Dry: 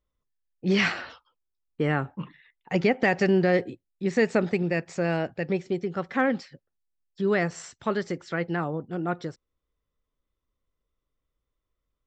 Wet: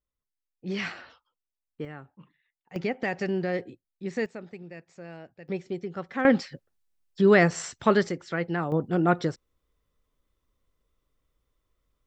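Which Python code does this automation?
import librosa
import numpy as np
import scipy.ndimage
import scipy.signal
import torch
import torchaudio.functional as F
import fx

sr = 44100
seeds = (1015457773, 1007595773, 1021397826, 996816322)

y = fx.gain(x, sr, db=fx.steps((0.0, -9.0), (1.85, -17.0), (2.76, -7.0), (4.26, -17.0), (5.48, -5.0), (6.25, 6.0), (8.09, -0.5), (8.72, 6.5)))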